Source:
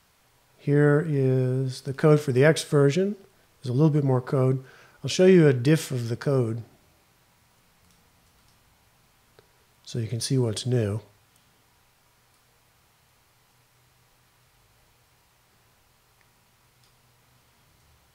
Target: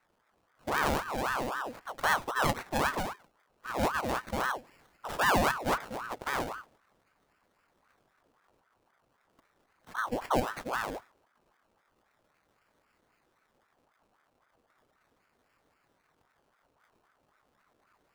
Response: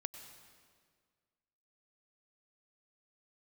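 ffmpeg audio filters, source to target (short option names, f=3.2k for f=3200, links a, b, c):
-filter_complex "[0:a]asettb=1/sr,asplit=3[a][b][c];[a]atrim=end=9.984[d];[b]atrim=start=9.98:end=10.4,asetpts=PTS-STARTPTS,afade=t=in:d=0.004:c=qsin,afade=t=out:st=0.416:d=0.004:c=qsin,tiltshelf=f=1.5k:g=6.5[e];[c]atrim=start=10.396[f];[d][e]acrossfade=d=0.004:c1=hsin:c2=qsin[g];[g][f]acrossfade=d=0.004:c1=qsin:c2=hsin,acrusher=samples=25:mix=1:aa=0.000001:lfo=1:lforange=15:lforate=0.37,aeval=exprs='val(0)*sin(2*PI*890*n/s+890*0.6/3.8*sin(2*PI*3.8*n/s))':c=same,volume=-7dB"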